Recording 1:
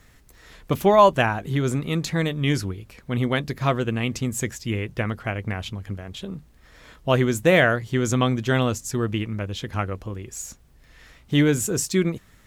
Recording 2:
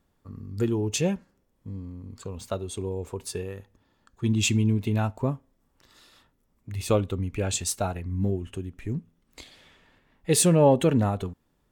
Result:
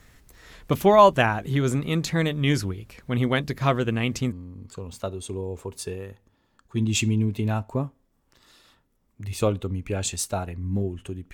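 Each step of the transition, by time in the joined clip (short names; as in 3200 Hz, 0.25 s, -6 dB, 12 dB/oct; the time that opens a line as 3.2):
recording 1
4.32 switch to recording 2 from 1.8 s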